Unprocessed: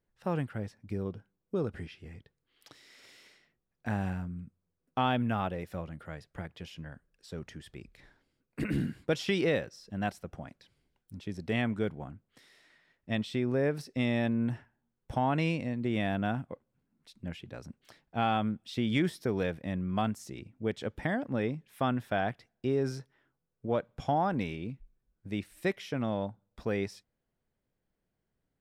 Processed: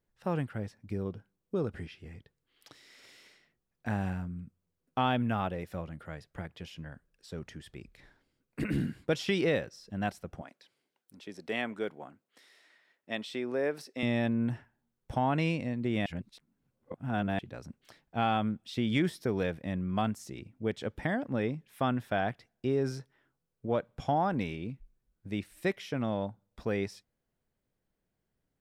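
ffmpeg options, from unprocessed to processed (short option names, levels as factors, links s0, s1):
-filter_complex "[0:a]asettb=1/sr,asplit=3[s0][s1][s2];[s0]atrim=end=10.414[s3];[s1]atrim=start=10.41:end=14.03,asetpts=PTS-STARTPTS,afade=t=in:d=0.004:c=qsin,afade=t=out:st=3.616:d=0.004:c=qsin,highpass=340[s4];[s2]atrim=start=14.026[s5];[s3][s4]acrossfade=d=0.004:c1=hsin:c2=qsin[s6];[s6][s5]acrossfade=d=0.004:c1=qsin:c2=hsin,asplit=3[s7][s8][s9];[s7]atrim=end=16.062[s10];[s8]atrim=start=16.058:end=17.392,asetpts=PTS-STARTPTS,areverse[s11];[s9]atrim=start=17.388[s12];[s10][s11]acrossfade=d=0.004:c1=hsin:c2=hsin[s13];[s13][s12]acrossfade=d=0.004:c1=hsin:c2=hsin"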